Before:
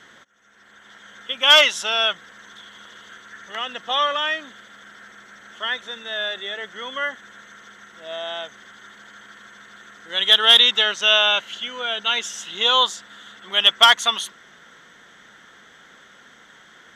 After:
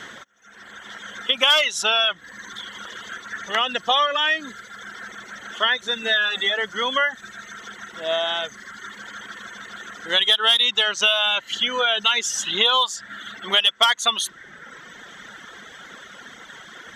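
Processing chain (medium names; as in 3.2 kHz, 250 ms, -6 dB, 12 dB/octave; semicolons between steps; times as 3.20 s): 6.02–6.50 s: comb 4.1 ms, depth 71%; in parallel at -12 dB: hard clipper -13.5 dBFS, distortion -8 dB; on the sum: compression 4:1, threshold -25 dBFS, peak gain reduction 15 dB; reverb removal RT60 1.3 s; trim +8.5 dB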